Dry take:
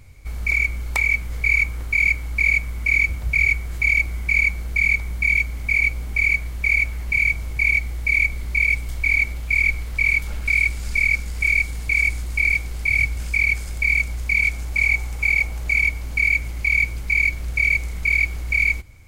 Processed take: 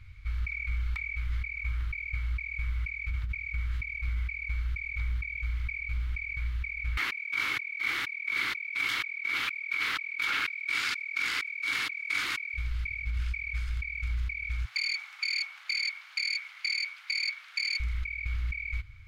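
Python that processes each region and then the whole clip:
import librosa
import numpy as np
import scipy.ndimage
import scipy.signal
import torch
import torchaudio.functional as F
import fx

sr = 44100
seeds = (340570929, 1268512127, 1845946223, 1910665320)

y = fx.chain(x, sr, fx.highpass(hz=260.0, slope=24),
    fx.env_flatten(amount_pct=70), at=(6.97, 12.54))
y = fx.chain(y, sr, fx.self_delay(depth_ms=0.22),
    fx.steep_highpass(hz=580.0, slope=72), at=(14.65, 17.8))
y = fx.curve_eq(y, sr, hz=(110.0, 190.0, 310.0, 630.0, 1300.0, 3600.0, 7800.0), db=(0, -21, -14, -26, 1, 0, -19))
y = fx.over_compress(y, sr, threshold_db=-26.0, ratio=-1.0)
y = F.gain(torch.from_numpy(y), -7.0).numpy()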